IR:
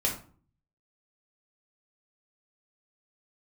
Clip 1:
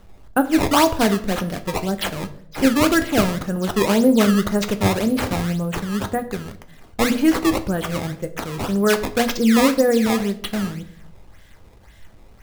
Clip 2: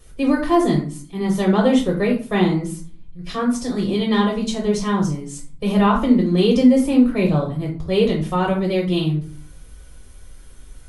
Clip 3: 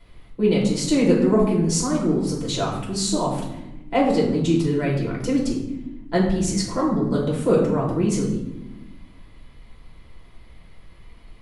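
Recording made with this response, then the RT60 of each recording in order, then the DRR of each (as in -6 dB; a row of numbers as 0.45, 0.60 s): 2; 0.70, 0.45, 1.0 s; 8.5, -2.0, -4.0 dB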